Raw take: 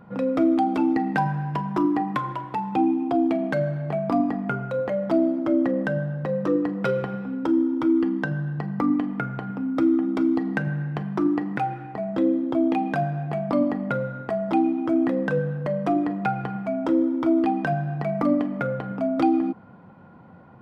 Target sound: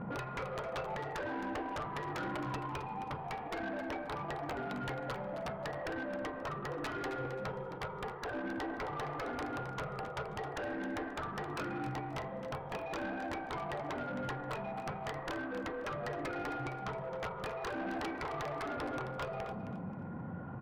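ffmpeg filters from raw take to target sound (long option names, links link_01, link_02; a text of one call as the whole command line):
ffmpeg -i in.wav -af "aphaser=in_gain=1:out_gain=1:delay=1.3:decay=0.29:speed=0.11:type=sinusoidal,afftfilt=real='re*lt(hypot(re,im),0.112)':imag='im*lt(hypot(re,im),0.112)':win_size=1024:overlap=0.75,lowpass=2400,aeval=exprs='(mod(23.7*val(0)+1,2)-1)/23.7':channel_layout=same,aemphasis=mode=reproduction:type=75kf,asoftclip=type=tanh:threshold=-38.5dB,aecho=1:1:266|532|798:0.282|0.0705|0.0176,volume=5dB" out.wav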